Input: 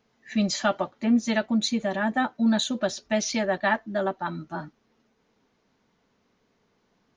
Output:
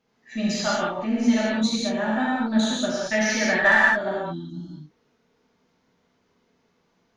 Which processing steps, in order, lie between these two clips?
3.01–3.91 bell 1700 Hz +12 dB 0.85 oct; 4.2–4.73 spectral gain 360–2900 Hz -29 dB; added harmonics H 6 -31 dB, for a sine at -3 dBFS; non-linear reverb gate 0.24 s flat, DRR -7 dB; gain -6 dB

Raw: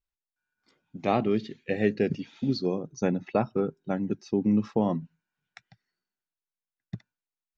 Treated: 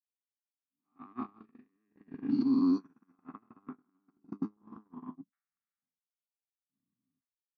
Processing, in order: spectral dilation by 0.48 s; transient shaper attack -11 dB, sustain +12 dB; double band-pass 550 Hz, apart 2.1 oct; gate -26 dBFS, range -45 dB; gain -1 dB

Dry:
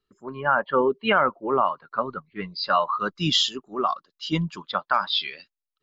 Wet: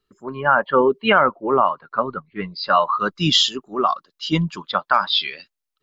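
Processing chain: 1.19–2.77 high shelf 5000 Hz -9.5 dB; gain +5 dB

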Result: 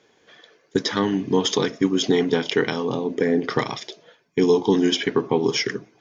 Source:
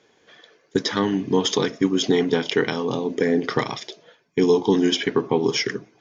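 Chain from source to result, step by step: 2.88–3.5 high shelf 3800 Hz -6.5 dB

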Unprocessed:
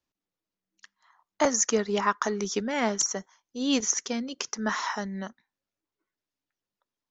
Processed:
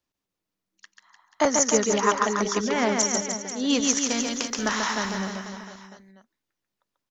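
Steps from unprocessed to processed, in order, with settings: 3.84–5.16 spectral contrast lowered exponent 0.69; reverse bouncing-ball echo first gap 0.14 s, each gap 1.15×, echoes 5; gain +2 dB

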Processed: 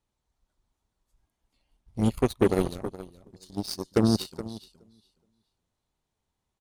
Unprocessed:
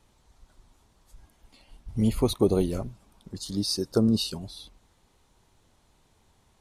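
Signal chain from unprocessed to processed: feedback echo 0.42 s, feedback 23%, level -8 dB; added harmonics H 7 -18 dB, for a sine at -10 dBFS

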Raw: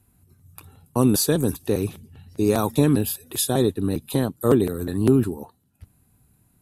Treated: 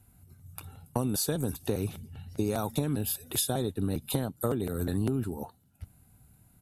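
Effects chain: comb 1.4 ms, depth 31%; compressor 12:1, threshold -25 dBFS, peak gain reduction 13 dB

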